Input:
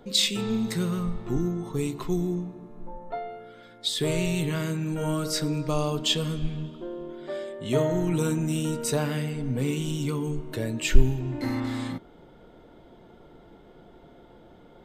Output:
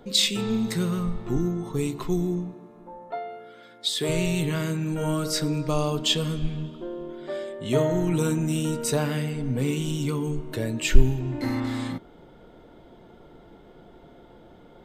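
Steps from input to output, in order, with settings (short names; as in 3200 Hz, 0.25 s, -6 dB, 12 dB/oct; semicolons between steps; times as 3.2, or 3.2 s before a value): 2.54–4.09 HPF 270 Hz 6 dB/oct; gain +1.5 dB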